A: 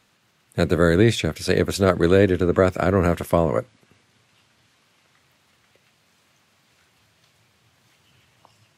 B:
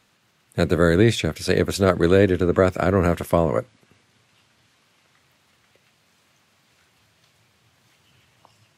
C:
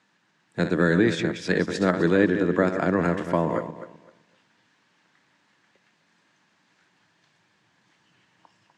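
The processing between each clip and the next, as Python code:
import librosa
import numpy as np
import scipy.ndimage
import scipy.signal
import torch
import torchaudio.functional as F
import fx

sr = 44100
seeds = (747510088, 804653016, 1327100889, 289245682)

y1 = x
y2 = fx.reverse_delay_fb(y1, sr, ms=128, feedback_pct=45, wet_db=-8.5)
y2 = fx.cabinet(y2, sr, low_hz=150.0, low_slope=12, high_hz=7600.0, hz=(180.0, 300.0, 920.0, 1700.0), db=(8, 8, 7, 9))
y2 = y2 * 10.0 ** (-7.0 / 20.0)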